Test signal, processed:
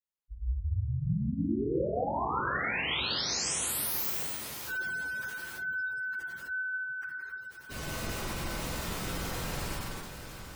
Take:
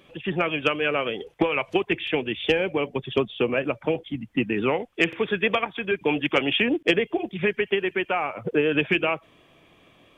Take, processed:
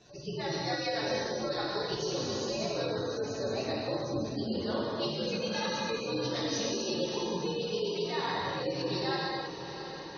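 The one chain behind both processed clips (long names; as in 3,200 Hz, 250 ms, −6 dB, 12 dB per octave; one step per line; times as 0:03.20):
partials spread apart or drawn together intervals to 123%
reversed playback
downward compressor 10 to 1, threshold −35 dBFS
reversed playback
feedback delay with all-pass diffusion 663 ms, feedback 68%, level −10.5 dB
reverb whose tail is shaped and stops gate 350 ms flat, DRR −4.5 dB
gate on every frequency bin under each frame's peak −30 dB strong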